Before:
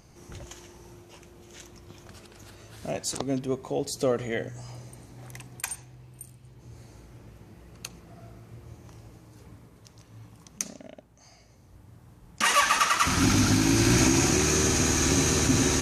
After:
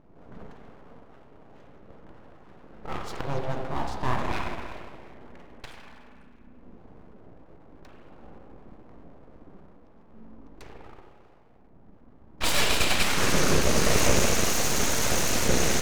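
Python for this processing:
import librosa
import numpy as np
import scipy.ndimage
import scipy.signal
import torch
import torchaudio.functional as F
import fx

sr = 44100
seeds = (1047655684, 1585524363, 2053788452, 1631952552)

y = fx.env_lowpass(x, sr, base_hz=820.0, full_db=-19.5)
y = fx.rev_spring(y, sr, rt60_s=1.9, pass_ms=(31, 45), chirp_ms=50, drr_db=0.0)
y = np.abs(y)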